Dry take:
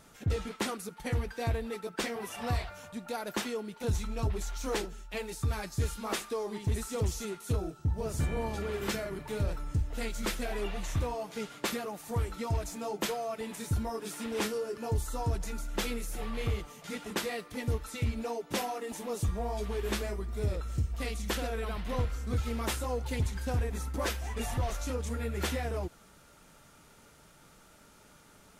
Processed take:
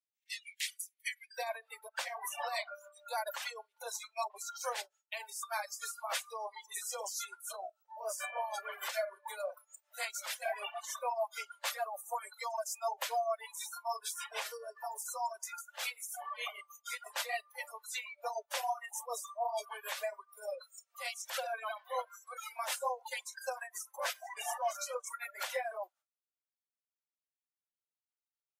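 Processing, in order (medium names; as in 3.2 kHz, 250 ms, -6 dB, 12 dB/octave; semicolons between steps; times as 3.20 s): spectral noise reduction 22 dB; expander -51 dBFS; reverb removal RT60 1.8 s; steep high-pass 1.9 kHz 72 dB/octave, from 1.36 s 530 Hz; peak limiter -32 dBFS, peak gain reduction 11 dB; tremolo triangle 6.7 Hz, depth 70%; tape noise reduction on one side only encoder only; trim +8 dB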